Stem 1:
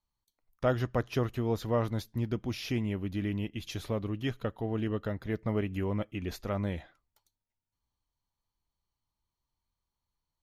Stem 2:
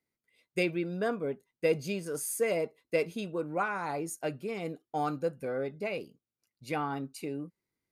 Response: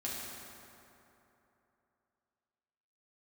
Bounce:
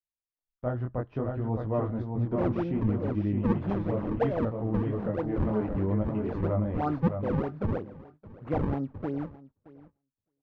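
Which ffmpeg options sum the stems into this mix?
-filter_complex "[0:a]flanger=delay=18.5:depth=6.2:speed=0.65,dynaudnorm=framelen=220:gausssize=11:maxgain=5dB,volume=0dB,asplit=3[link_01][link_02][link_03];[link_02]volume=-4.5dB[link_04];[1:a]acrusher=samples=37:mix=1:aa=0.000001:lfo=1:lforange=59.2:lforate=3.1,equalizer=frequency=97:width=2.3:gain=5.5,acontrast=41,adelay=1800,volume=0dB,asplit=2[link_05][link_06];[link_06]volume=-19.5dB[link_07];[link_03]apad=whole_len=428407[link_08];[link_05][link_08]sidechaincompress=threshold=-34dB:ratio=8:attack=37:release=217[link_09];[link_04][link_07]amix=inputs=2:normalize=0,aecho=0:1:616|1232|1848:1|0.2|0.04[link_10];[link_01][link_09][link_10]amix=inputs=3:normalize=0,lowpass=1000,agate=range=-18dB:threshold=-53dB:ratio=16:detection=peak,equalizer=frequency=410:width=5.1:gain=-4"

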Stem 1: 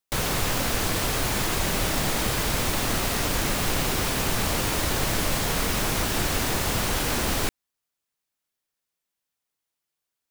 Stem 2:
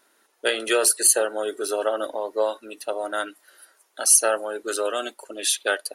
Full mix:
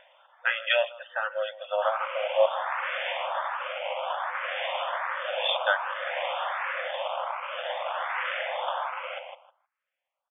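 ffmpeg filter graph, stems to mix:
ffmpeg -i stem1.wav -i stem2.wav -filter_complex "[0:a]acrusher=samples=17:mix=1:aa=0.000001:lfo=1:lforange=17:lforate=0.58,acontrast=57,adelay=1700,volume=-5.5dB,asplit=2[link_01][link_02];[link_02]volume=-8dB[link_03];[1:a]acompressor=mode=upward:threshold=-44dB:ratio=2.5,volume=2.5dB,asplit=3[link_04][link_05][link_06];[link_04]atrim=end=2.46,asetpts=PTS-STARTPTS,afade=type=out:start_time=2.456:duration=0.004:curve=hsin[link_07];[link_05]atrim=start=2.46:end=5.21,asetpts=PTS-STARTPTS,volume=0[link_08];[link_06]atrim=start=5.21,asetpts=PTS-STARTPTS,afade=type=in:duration=0.004:curve=hsin[link_09];[link_07][link_08][link_09]concat=n=3:v=0:a=1,asplit=2[link_10][link_11];[link_11]volume=-22dB[link_12];[link_03][link_12]amix=inputs=2:normalize=0,aecho=0:1:157|314|471:1|0.17|0.0289[link_13];[link_01][link_10][link_13]amix=inputs=3:normalize=0,afftfilt=real='re*between(b*sr/4096,500,3600)':imag='im*between(b*sr/4096,500,3600)':win_size=4096:overlap=0.75,asplit=2[link_14][link_15];[link_15]afreqshift=1.3[link_16];[link_14][link_16]amix=inputs=2:normalize=1" out.wav

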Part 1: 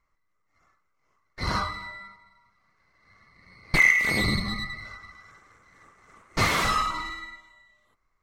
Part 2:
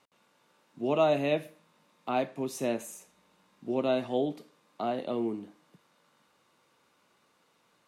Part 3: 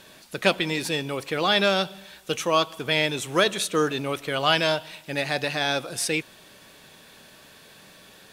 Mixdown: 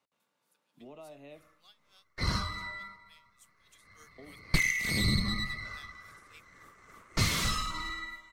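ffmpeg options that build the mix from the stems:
ffmpeg -i stem1.wav -i stem2.wav -i stem3.wav -filter_complex "[0:a]equalizer=frequency=800:width_type=o:width=0.42:gain=-5.5,adelay=800,volume=0dB[link_01];[1:a]bandreject=frequency=360:width=12,acompressor=threshold=-35dB:ratio=5,volume=-12.5dB,asplit=3[link_02][link_03][link_04];[link_02]atrim=end=2.03,asetpts=PTS-STARTPTS,afade=type=out:start_time=2.026:duration=0.004:curve=hsin[link_05];[link_03]atrim=start=2.03:end=4.18,asetpts=PTS-STARTPTS,volume=0[link_06];[link_04]atrim=start=4.18,asetpts=PTS-STARTPTS,afade=type=in:duration=0.004:curve=hsin[link_07];[link_05][link_06][link_07]concat=n=3:v=0:a=1[link_08];[2:a]aderivative,alimiter=limit=-21dB:level=0:latency=1:release=404,aeval=exprs='val(0)*pow(10,-28*(0.5-0.5*cos(2*PI*3.4*n/s))/20)':channel_layout=same,adelay=200,volume=-13.5dB,afade=type=in:start_time=3.51:duration=0.52:silence=0.298538[link_09];[link_01][link_08][link_09]amix=inputs=3:normalize=0,acrossover=split=230|3000[link_10][link_11][link_12];[link_11]acompressor=threshold=-36dB:ratio=6[link_13];[link_10][link_13][link_12]amix=inputs=3:normalize=0" out.wav

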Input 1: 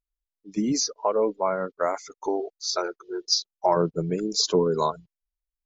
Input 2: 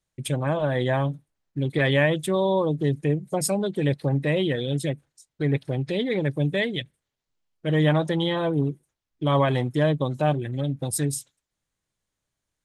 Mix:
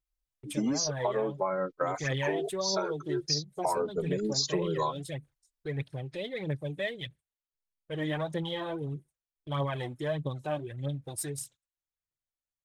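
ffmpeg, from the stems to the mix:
ffmpeg -i stem1.wav -i stem2.wav -filter_complex "[0:a]asplit=2[link_01][link_02];[link_02]adelay=3.3,afreqshift=-0.63[link_03];[link_01][link_03]amix=inputs=2:normalize=1,volume=2.5dB[link_04];[1:a]agate=range=-10dB:threshold=-45dB:ratio=16:detection=peak,equalizer=frequency=250:width_type=o:width=1.1:gain=-5,aphaser=in_gain=1:out_gain=1:delay=3.7:decay=0.52:speed=1.6:type=triangular,adelay=250,volume=-9.5dB[link_05];[link_04][link_05]amix=inputs=2:normalize=0,acompressor=threshold=-26dB:ratio=6" out.wav

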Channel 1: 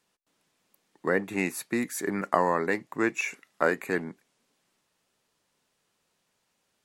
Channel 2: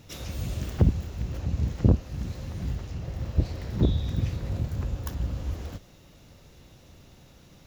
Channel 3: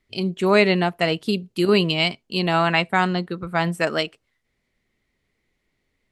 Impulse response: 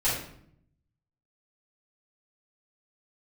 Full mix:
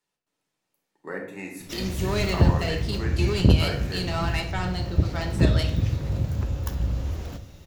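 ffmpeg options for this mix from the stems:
-filter_complex "[0:a]volume=-13dB,asplit=2[link_01][link_02];[link_02]volume=-8dB[link_03];[1:a]adelay=1600,volume=2dB,asplit=2[link_04][link_05];[link_05]volume=-20.5dB[link_06];[2:a]equalizer=frequency=5300:width_type=o:width=0.87:gain=11.5,flanger=delay=7.6:depth=3.1:regen=-69:speed=1.4:shape=triangular,asoftclip=type=tanh:threshold=-20dB,adelay=1600,volume=-5.5dB,asplit=2[link_07][link_08];[link_08]volume=-13.5dB[link_09];[3:a]atrim=start_sample=2205[link_10];[link_03][link_06][link_09]amix=inputs=3:normalize=0[link_11];[link_11][link_10]afir=irnorm=-1:irlink=0[link_12];[link_01][link_04][link_07][link_12]amix=inputs=4:normalize=0"

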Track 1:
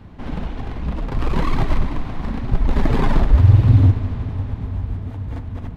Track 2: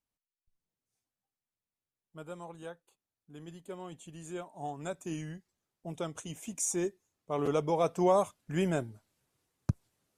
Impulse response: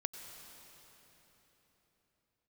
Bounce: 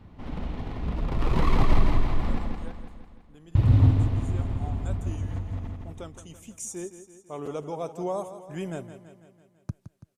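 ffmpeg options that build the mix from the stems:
-filter_complex "[0:a]bandreject=frequency=1600:width=13,dynaudnorm=framelen=190:gausssize=11:maxgain=11.5dB,volume=-8dB,asplit=3[link_01][link_02][link_03];[link_01]atrim=end=2.39,asetpts=PTS-STARTPTS,afade=type=out:start_time=2.386:duration=0.004:curve=hsin[link_04];[link_02]atrim=start=2.39:end=3.55,asetpts=PTS-STARTPTS,volume=0[link_05];[link_03]atrim=start=3.55,asetpts=PTS-STARTPTS,afade=type=in:duration=0.004:curve=hsin[link_06];[link_04][link_05][link_06]concat=n=3:v=0:a=1,asplit=2[link_07][link_08];[link_08]volume=-4dB[link_09];[1:a]adynamicequalizer=threshold=0.00355:dfrequency=2100:dqfactor=0.77:tfrequency=2100:tqfactor=0.77:attack=5:release=100:ratio=0.375:range=3.5:mode=cutabove:tftype=bell,volume=-4dB,asplit=2[link_10][link_11];[link_11]volume=-12dB[link_12];[link_09][link_12]amix=inputs=2:normalize=0,aecho=0:1:166|332|498|664|830|996|1162|1328|1494:1|0.57|0.325|0.185|0.106|0.0602|0.0343|0.0195|0.0111[link_13];[link_07][link_10][link_13]amix=inputs=3:normalize=0"

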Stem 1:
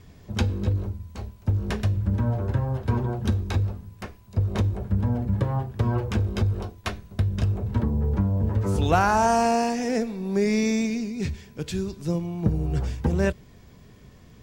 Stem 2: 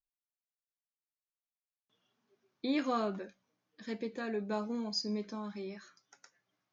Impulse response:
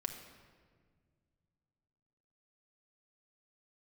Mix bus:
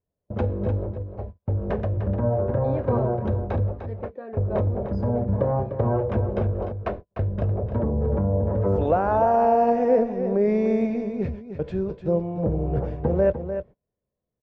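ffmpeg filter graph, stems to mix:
-filter_complex "[0:a]agate=range=-37dB:threshold=-35dB:ratio=16:detection=peak,alimiter=limit=-16.5dB:level=0:latency=1:release=12,volume=-1dB,asplit=2[link_01][link_02];[link_02]volume=-9dB[link_03];[1:a]volume=-5.5dB[link_04];[link_03]aecho=0:1:300:1[link_05];[link_01][link_04][link_05]amix=inputs=3:normalize=0,lowpass=1500,equalizer=frequency=560:width_type=o:width=0.81:gain=14.5"

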